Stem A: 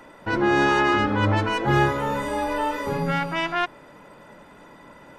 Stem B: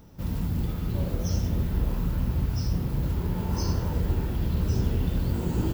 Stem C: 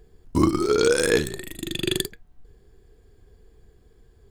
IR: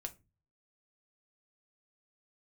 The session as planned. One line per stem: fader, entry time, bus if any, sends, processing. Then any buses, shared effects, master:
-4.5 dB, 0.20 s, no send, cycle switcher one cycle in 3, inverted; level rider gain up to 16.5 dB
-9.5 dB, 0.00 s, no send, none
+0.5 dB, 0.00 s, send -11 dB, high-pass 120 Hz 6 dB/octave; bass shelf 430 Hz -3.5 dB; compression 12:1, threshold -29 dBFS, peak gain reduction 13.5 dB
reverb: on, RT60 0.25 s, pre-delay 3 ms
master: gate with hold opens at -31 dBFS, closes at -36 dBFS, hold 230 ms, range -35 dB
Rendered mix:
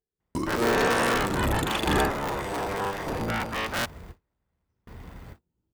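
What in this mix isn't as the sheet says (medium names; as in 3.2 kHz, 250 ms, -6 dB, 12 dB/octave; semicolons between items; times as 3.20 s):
stem A: missing level rider gain up to 16.5 dB; stem B -9.5 dB -> -18.5 dB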